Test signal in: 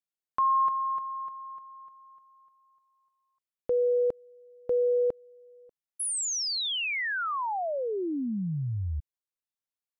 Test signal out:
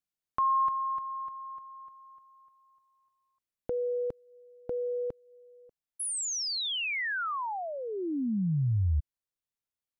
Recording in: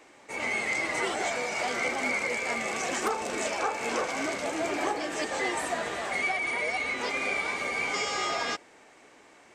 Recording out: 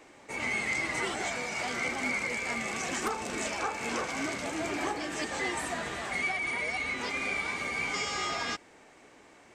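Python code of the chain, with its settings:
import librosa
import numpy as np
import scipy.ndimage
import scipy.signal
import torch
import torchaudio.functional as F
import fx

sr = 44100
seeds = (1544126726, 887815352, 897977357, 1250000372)

p1 = fx.low_shelf(x, sr, hz=210.0, db=8.0)
p2 = fx.rider(p1, sr, range_db=4, speed_s=2.0)
p3 = p1 + F.gain(torch.from_numpy(p2), -1.5).numpy()
p4 = fx.dynamic_eq(p3, sr, hz=540.0, q=1.1, threshold_db=-36.0, ratio=4.0, max_db=-6)
y = F.gain(torch.from_numpy(p4), -7.0).numpy()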